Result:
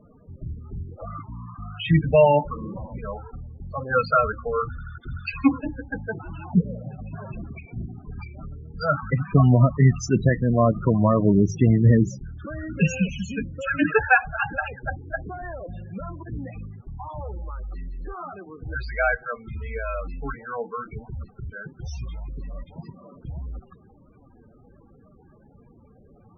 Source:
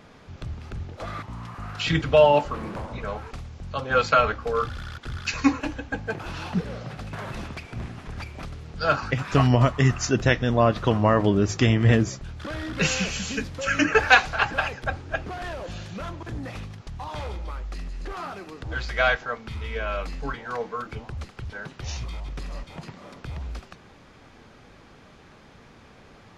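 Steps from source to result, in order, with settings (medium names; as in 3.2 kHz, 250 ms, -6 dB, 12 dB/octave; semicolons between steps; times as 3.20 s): dynamic bell 170 Hz, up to +8 dB, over -39 dBFS, Q 1.9; loudest bins only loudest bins 16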